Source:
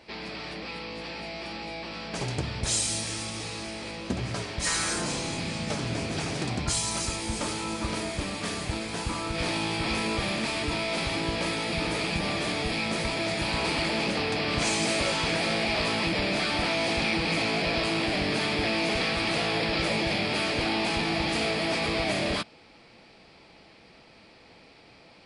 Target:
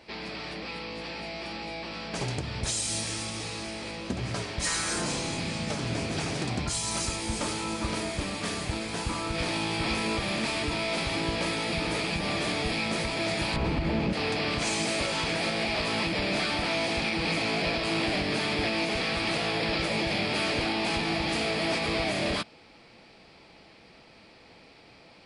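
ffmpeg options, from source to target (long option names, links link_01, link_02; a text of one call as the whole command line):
ffmpeg -i in.wav -filter_complex "[0:a]asettb=1/sr,asplit=3[link_01][link_02][link_03];[link_01]atrim=end=13.564[link_04];[link_02]atrim=start=13.56:end=14.13,asetpts=PTS-STARTPTS,afade=type=in:duration=0.004:curve=qsin,afade=type=out:start_time=0.566:duration=0.004:curve=qsin,aemphasis=mode=reproduction:type=riaa[link_05];[link_03]atrim=start=14.126[link_06];[link_04][link_05]acrossfade=duration=0.004:curve1=hsin:curve2=qsin[link_07];[link_07][link_06]acrossfade=duration=0.004:curve1=qsin:curve2=hsin,alimiter=limit=-18.5dB:level=0:latency=1:release=170" out.wav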